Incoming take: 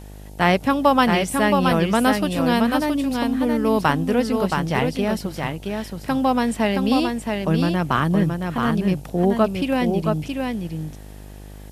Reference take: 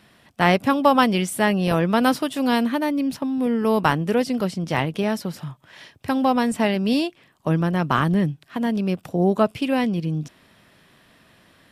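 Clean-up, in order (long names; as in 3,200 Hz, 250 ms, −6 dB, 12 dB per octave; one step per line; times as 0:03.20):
hum removal 50.7 Hz, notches 18
downward expander −30 dBFS, range −21 dB
echo removal 672 ms −4.5 dB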